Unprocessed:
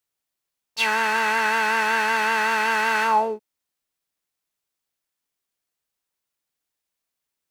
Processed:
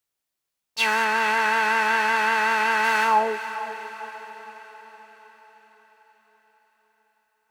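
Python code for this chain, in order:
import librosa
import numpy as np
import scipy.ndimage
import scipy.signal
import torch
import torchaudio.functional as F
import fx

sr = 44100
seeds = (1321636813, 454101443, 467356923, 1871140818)

y = fx.high_shelf(x, sr, hz=4800.0, db=-5.0, at=(1.04, 2.84))
y = fx.echo_diffused(y, sr, ms=455, feedback_pct=55, wet_db=-12.0)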